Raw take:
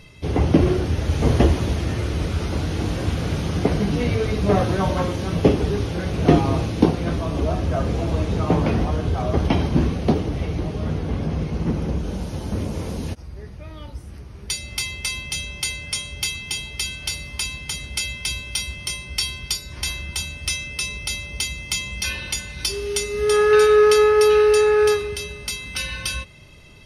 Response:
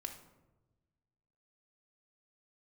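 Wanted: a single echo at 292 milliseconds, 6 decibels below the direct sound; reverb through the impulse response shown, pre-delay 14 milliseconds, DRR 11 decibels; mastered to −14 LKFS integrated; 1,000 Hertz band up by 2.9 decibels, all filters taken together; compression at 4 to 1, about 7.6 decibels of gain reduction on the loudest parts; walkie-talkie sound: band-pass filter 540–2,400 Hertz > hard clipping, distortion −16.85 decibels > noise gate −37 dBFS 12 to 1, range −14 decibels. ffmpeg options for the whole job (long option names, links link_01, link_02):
-filter_complex "[0:a]equalizer=frequency=1000:width_type=o:gain=5,acompressor=threshold=-19dB:ratio=4,aecho=1:1:292:0.501,asplit=2[link_01][link_02];[1:a]atrim=start_sample=2205,adelay=14[link_03];[link_02][link_03]afir=irnorm=-1:irlink=0,volume=-8.5dB[link_04];[link_01][link_04]amix=inputs=2:normalize=0,highpass=540,lowpass=2400,asoftclip=type=hard:threshold=-21dB,agate=range=-14dB:threshold=-37dB:ratio=12,volume=16.5dB"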